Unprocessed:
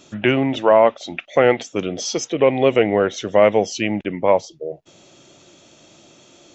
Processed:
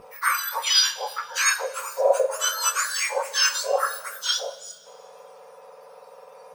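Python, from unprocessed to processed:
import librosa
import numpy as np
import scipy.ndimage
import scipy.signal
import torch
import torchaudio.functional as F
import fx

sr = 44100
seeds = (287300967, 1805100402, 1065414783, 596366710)

y = fx.octave_mirror(x, sr, pivot_hz=1800.0)
y = fx.bass_treble(y, sr, bass_db=8, treble_db=-11)
y = fx.rev_double_slope(y, sr, seeds[0], early_s=0.26, late_s=1.9, knee_db=-18, drr_db=4.0)
y = F.gain(torch.from_numpy(y), 2.0).numpy()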